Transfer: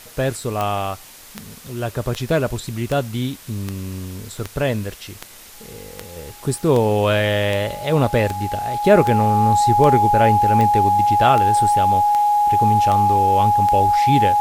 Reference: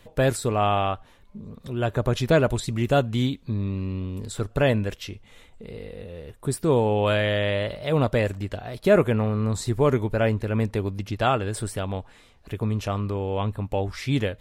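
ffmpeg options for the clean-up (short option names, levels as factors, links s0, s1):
-af "adeclick=t=4,bandreject=f=830:w=30,afwtdn=0.0089,asetnsamples=n=441:p=0,asendcmd='6.16 volume volume -4.5dB',volume=1"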